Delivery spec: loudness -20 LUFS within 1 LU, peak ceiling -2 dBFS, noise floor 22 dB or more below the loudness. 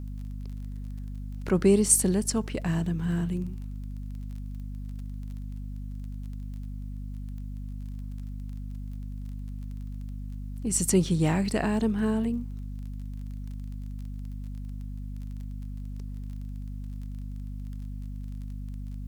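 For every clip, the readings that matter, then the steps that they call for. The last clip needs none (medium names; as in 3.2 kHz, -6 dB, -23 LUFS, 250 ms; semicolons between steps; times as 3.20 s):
tick rate 23 per s; hum 50 Hz; highest harmonic 250 Hz; hum level -33 dBFS; loudness -31.5 LUFS; peak level -6.5 dBFS; loudness target -20.0 LUFS
-> de-click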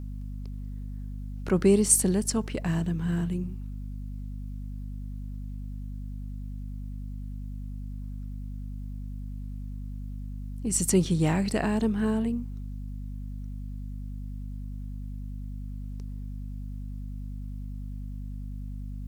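tick rate 0.052 per s; hum 50 Hz; highest harmonic 250 Hz; hum level -33 dBFS
-> de-hum 50 Hz, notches 5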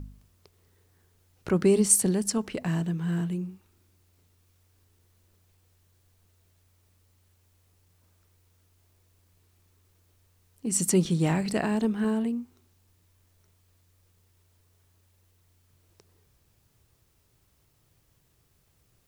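hum not found; loudness -26.0 LUFS; peak level -6.5 dBFS; loudness target -20.0 LUFS
-> trim +6 dB; peak limiter -2 dBFS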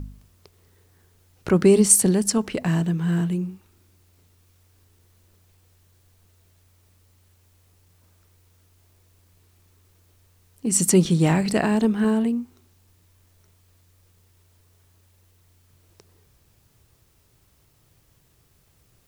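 loudness -20.0 LUFS; peak level -2.0 dBFS; noise floor -61 dBFS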